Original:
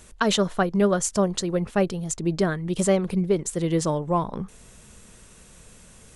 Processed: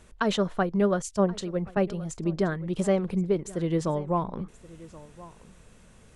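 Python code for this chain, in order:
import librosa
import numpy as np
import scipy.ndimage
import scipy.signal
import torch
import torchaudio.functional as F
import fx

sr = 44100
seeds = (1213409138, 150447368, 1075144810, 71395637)

y = fx.high_shelf(x, sr, hz=4600.0, db=-12.0)
y = y + 10.0 ** (-19.5 / 20.0) * np.pad(y, (int(1077 * sr / 1000.0), 0))[:len(y)]
y = fx.band_widen(y, sr, depth_pct=70, at=(1.02, 1.77))
y = F.gain(torch.from_numpy(y), -3.0).numpy()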